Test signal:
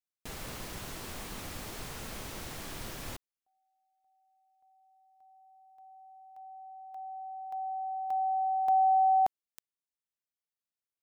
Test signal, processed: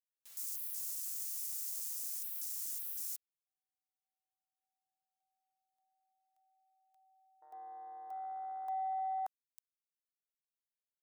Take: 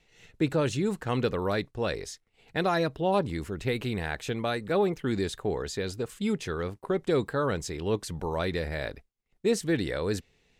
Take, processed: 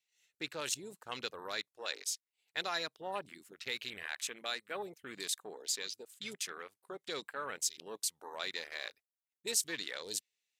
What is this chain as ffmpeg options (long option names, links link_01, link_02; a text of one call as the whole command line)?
ffmpeg -i in.wav -af "aderivative,afwtdn=0.00282,volume=6.5dB" out.wav